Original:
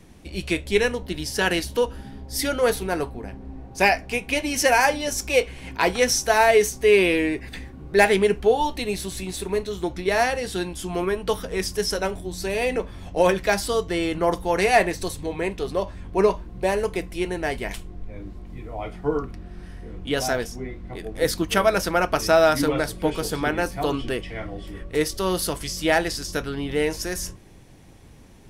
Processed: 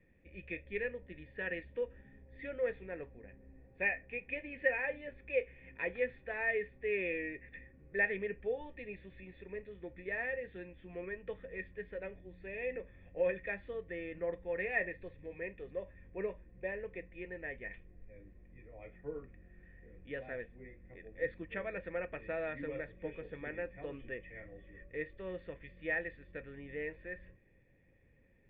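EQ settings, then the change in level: cascade formant filter e; peaking EQ 590 Hz -12.5 dB 1.7 oct; +1.0 dB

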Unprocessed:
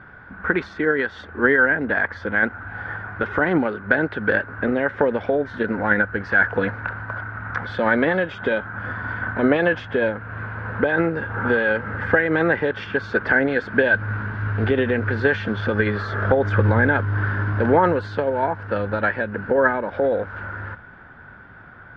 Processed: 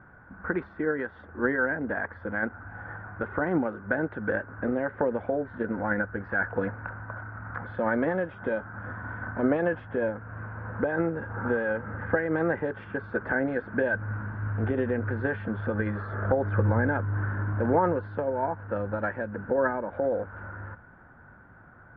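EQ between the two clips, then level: low-pass 1.3 kHz 12 dB/octave; band-stop 420 Hz, Q 12; -6.0 dB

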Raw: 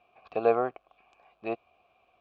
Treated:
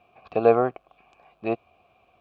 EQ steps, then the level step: peaking EQ 120 Hz +8 dB 2.7 oct; +4.0 dB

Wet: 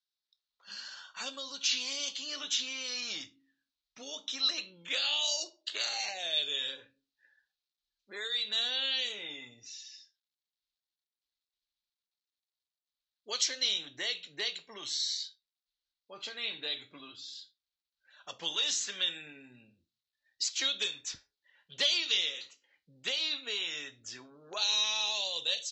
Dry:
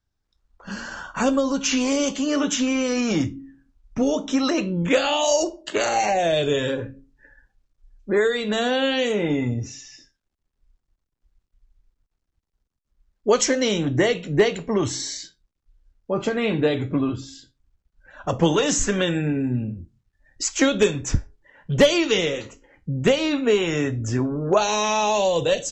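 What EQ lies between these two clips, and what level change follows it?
band-pass filter 4 kHz, Q 3.9; +3.5 dB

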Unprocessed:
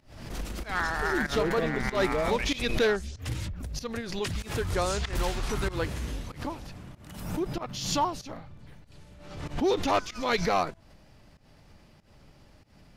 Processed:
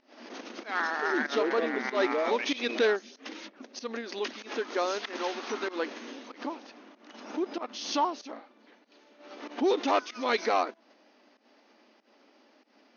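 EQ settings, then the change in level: brick-wall FIR band-pass 220–6700 Hz; distance through air 63 m; 0.0 dB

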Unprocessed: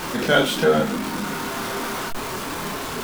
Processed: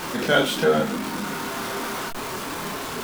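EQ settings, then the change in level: bass shelf 80 Hz -6 dB; -1.5 dB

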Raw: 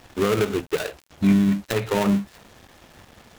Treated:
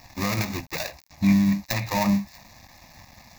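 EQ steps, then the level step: treble shelf 4.1 kHz +7.5 dB; static phaser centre 2.1 kHz, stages 8; +1.5 dB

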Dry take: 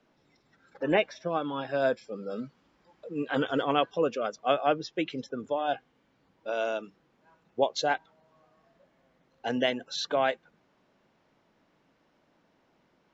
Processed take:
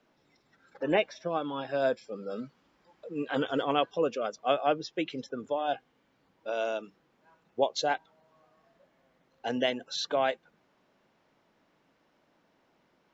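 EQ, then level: bass shelf 250 Hz -4 dB; dynamic bell 1.6 kHz, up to -3 dB, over -41 dBFS, Q 1.1; 0.0 dB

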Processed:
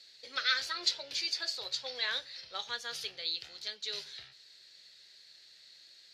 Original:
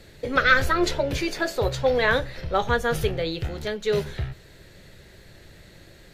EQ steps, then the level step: band-pass filter 4.6 kHz, Q 3.4; +4.5 dB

